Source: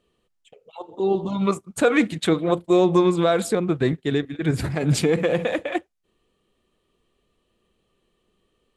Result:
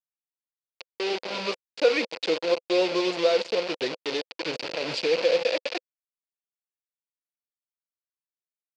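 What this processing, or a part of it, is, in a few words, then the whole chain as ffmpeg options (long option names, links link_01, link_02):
hand-held game console: -filter_complex "[0:a]asettb=1/sr,asplit=3[link_01][link_02][link_03];[link_01]atrim=end=1.264[link_04];[link_02]atrim=start=1.26:end=1.71,asetpts=PTS-STARTPTS,afade=type=in:duration=0.004:curve=qsin,afade=type=out:start_time=0.446:duration=0.004:curve=qsin,lowshelf=frequency=67:gain=5[link_05];[link_03]atrim=start=1.706[link_06];[link_04][link_05]acrossfade=duration=0.004:curve1=hsin:curve2=qsin[link_07];[link_07][link_06]acrossfade=duration=0.004:curve1=qsin:curve2=hsin,asplit=2[link_08][link_09];[link_09]adelay=266,lowpass=frequency=850:poles=1,volume=-17dB,asplit=2[link_10][link_11];[link_11]adelay=266,lowpass=frequency=850:poles=1,volume=0.43,asplit=2[link_12][link_13];[link_13]adelay=266,lowpass=frequency=850:poles=1,volume=0.43,asplit=2[link_14][link_15];[link_15]adelay=266,lowpass=frequency=850:poles=1,volume=0.43[link_16];[link_08][link_10][link_12][link_14][link_16]amix=inputs=5:normalize=0,acrusher=bits=3:mix=0:aa=0.000001,highpass=460,equalizer=frequency=510:width_type=q:width=4:gain=9,equalizer=frequency=760:width_type=q:width=4:gain=-4,equalizer=frequency=1200:width_type=q:width=4:gain=-7,equalizer=frequency=1700:width_type=q:width=4:gain=-5,equalizer=frequency=2600:width_type=q:width=4:gain=6,equalizer=frequency=4600:width_type=q:width=4:gain=8,lowpass=frequency=5100:width=0.5412,lowpass=frequency=5100:width=1.3066,volume=-5dB"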